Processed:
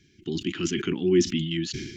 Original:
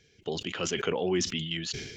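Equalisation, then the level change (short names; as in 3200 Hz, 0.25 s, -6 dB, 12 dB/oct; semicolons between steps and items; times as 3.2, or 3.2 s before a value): EQ curve 110 Hz 0 dB, 350 Hz +8 dB, 500 Hz -27 dB, 1700 Hz -4 dB; +4.0 dB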